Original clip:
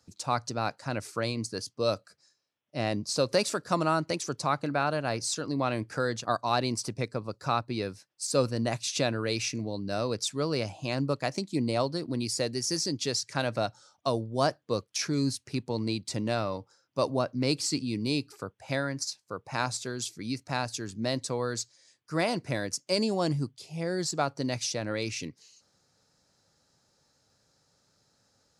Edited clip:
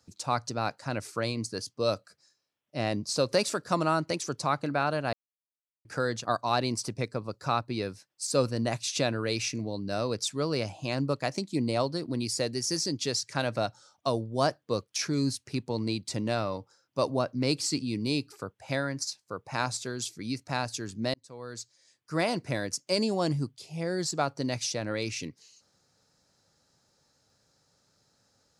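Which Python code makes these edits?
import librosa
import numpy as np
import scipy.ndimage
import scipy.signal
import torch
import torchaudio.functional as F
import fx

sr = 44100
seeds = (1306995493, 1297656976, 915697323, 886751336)

y = fx.edit(x, sr, fx.silence(start_s=5.13, length_s=0.72),
    fx.fade_in_span(start_s=21.14, length_s=0.99), tone=tone)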